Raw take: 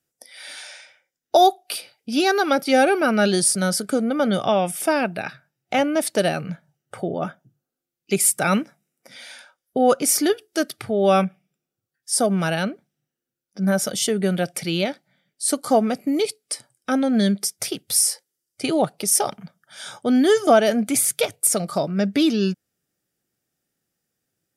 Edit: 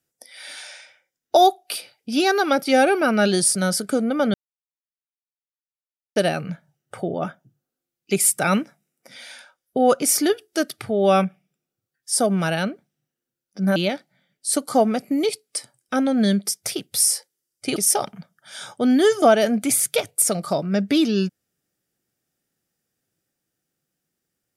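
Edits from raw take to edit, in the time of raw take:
0:04.34–0:06.16: silence
0:13.76–0:14.72: remove
0:18.72–0:19.01: remove

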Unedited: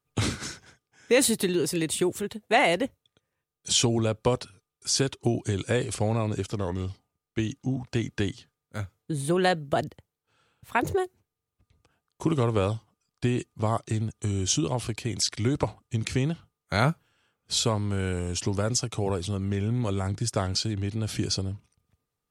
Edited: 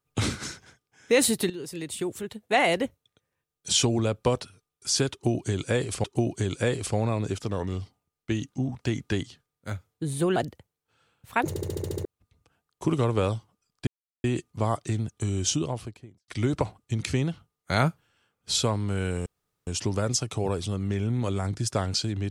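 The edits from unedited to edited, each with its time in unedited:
0:01.50–0:02.74: fade in, from −13.5 dB
0:05.12–0:06.04: repeat, 2 plays
0:09.44–0:09.75: remove
0:10.88: stutter in place 0.07 s, 8 plays
0:13.26: splice in silence 0.37 s
0:14.45–0:15.30: fade out and dull
0:18.28: splice in room tone 0.41 s

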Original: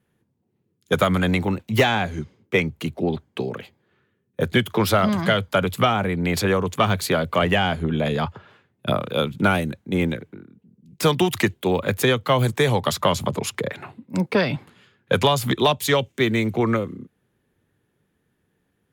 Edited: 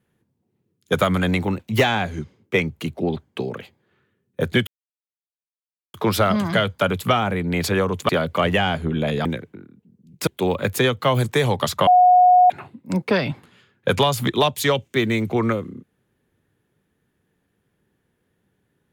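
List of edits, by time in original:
0:04.67: splice in silence 1.27 s
0:06.82–0:07.07: remove
0:08.23–0:10.04: remove
0:11.06–0:11.51: remove
0:13.11–0:13.74: beep over 726 Hz −9 dBFS

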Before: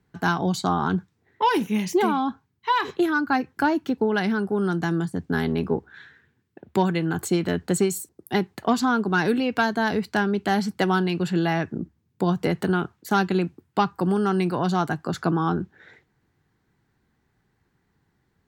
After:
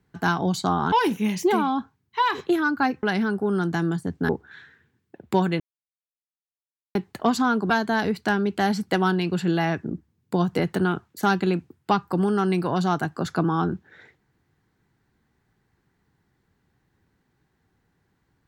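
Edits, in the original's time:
0:00.92–0:01.42: remove
0:03.53–0:04.12: remove
0:05.38–0:05.72: remove
0:07.03–0:08.38: silence
0:09.13–0:09.58: remove

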